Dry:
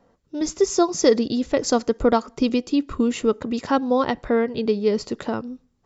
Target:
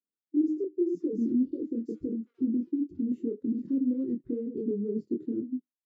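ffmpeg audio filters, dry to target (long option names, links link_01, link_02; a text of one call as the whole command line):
ffmpeg -i in.wav -filter_complex "[0:a]acompressor=threshold=-26dB:ratio=2,asoftclip=type=tanh:threshold=-29dB,equalizer=frequency=720:width=1.1:gain=-2,bandreject=frequency=309.1:width_type=h:width=4,bandreject=frequency=618.2:width_type=h:width=4,bandreject=frequency=927.3:width_type=h:width=4,bandreject=frequency=1236.4:width_type=h:width=4,bandreject=frequency=1545.5:width_type=h:width=4,bandreject=frequency=1854.6:width_type=h:width=4,bandreject=frequency=2163.7:width_type=h:width=4,bandreject=frequency=2472.8:width_type=h:width=4,bandreject=frequency=2781.9:width_type=h:width=4,bandreject=frequency=3091:width_type=h:width=4,bandreject=frequency=3400.1:width_type=h:width=4,bandreject=frequency=3709.2:width_type=h:width=4,bandreject=frequency=4018.3:width_type=h:width=4,bandreject=frequency=4327.4:width_type=h:width=4,bandreject=frequency=4636.5:width_type=h:width=4,bandreject=frequency=4945.6:width_type=h:width=4,bandreject=frequency=5254.7:width_type=h:width=4,bandreject=frequency=5563.8:width_type=h:width=4,bandreject=frequency=5872.9:width_type=h:width=4,bandreject=frequency=6182:width_type=h:width=4,bandreject=frequency=6491.1:width_type=h:width=4,bandreject=frequency=6800.2:width_type=h:width=4,bandreject=frequency=7109.3:width_type=h:width=4,bandreject=frequency=7418.4:width_type=h:width=4,bandreject=frequency=7727.5:width_type=h:width=4,bandreject=frequency=8036.6:width_type=h:width=4,bandreject=frequency=8345.7:width_type=h:width=4,bandreject=frequency=8654.8:width_type=h:width=4,bandreject=frequency=8963.9:width_type=h:width=4,bandreject=frequency=9273:width_type=h:width=4,bandreject=frequency=9582.1:width_type=h:width=4,bandreject=frequency=9891.2:width_type=h:width=4,bandreject=frequency=10200.3:width_type=h:width=4,bandreject=frequency=10509.4:width_type=h:width=4,bandreject=frequency=10818.5:width_type=h:width=4,bandreject=frequency=11127.6:width_type=h:width=4,bandreject=frequency=11436.7:width_type=h:width=4,flanger=delay=22.5:depth=3.7:speed=2,agate=range=-18dB:threshold=-42dB:ratio=16:detection=peak,lowshelf=frequency=490:width_type=q:width=3:gain=13,asettb=1/sr,asplit=3[link_01][link_02][link_03];[link_01]atrim=end=0.644[link_04];[link_02]atrim=start=0.64:end=3.12,asetpts=PTS-STARTPTS,afade=type=in:duration=0.004:curve=qsin,afade=type=out:start_time=2.476:duration=0.004:curve=qsin,acrossover=split=760[link_05][link_06];[link_06]adelay=220[link_07];[link_05][link_07]amix=inputs=2:normalize=0,atrim=end_sample=109368[link_08];[link_03]atrim=start=3.116[link_09];[link_04][link_08]acrossfade=duration=0.004:curve1=hsin:curve2=qsin[link_10];[link_10][link_09]acrossfade=duration=0.004:curve1=qsin:curve2=hsin,afftdn=noise_reduction=26:noise_floor=-21,highpass=200,volume=-7dB" out.wav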